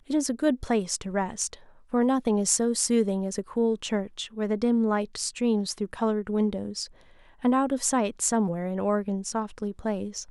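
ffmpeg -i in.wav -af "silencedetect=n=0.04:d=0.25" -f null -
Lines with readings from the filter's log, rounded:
silence_start: 1.53
silence_end: 1.94 | silence_duration: 0.41
silence_start: 6.84
silence_end: 7.44 | silence_duration: 0.61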